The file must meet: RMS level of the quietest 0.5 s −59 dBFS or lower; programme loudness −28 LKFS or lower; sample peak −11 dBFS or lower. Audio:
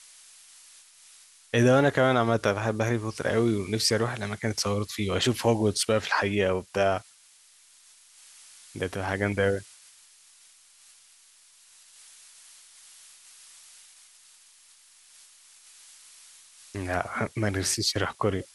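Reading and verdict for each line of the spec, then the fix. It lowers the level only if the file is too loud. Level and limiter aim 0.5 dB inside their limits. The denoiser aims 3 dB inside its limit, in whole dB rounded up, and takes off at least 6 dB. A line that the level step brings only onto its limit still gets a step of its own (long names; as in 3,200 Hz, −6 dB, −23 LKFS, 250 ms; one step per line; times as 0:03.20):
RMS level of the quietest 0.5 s −57 dBFS: out of spec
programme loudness −26.0 LKFS: out of spec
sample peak −8.0 dBFS: out of spec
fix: level −2.5 dB
brickwall limiter −11.5 dBFS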